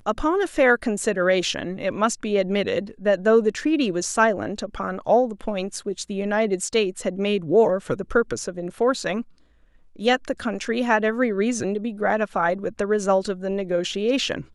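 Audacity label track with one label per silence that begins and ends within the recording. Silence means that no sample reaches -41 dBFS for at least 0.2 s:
9.230000	9.960000	silence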